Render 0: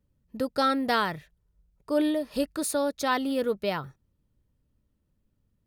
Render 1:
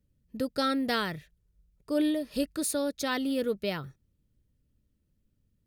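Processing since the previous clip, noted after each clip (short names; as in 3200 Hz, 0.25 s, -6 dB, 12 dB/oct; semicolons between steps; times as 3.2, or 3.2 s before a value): bell 930 Hz -9.5 dB 1.2 oct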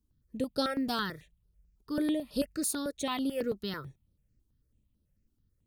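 step phaser 9.1 Hz 530–7200 Hz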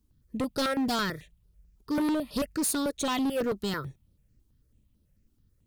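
hard clip -31 dBFS, distortion -10 dB; gain +6.5 dB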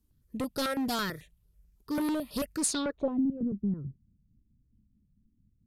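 low-pass sweep 13000 Hz -> 220 Hz, 2.59–3.21; gain -3 dB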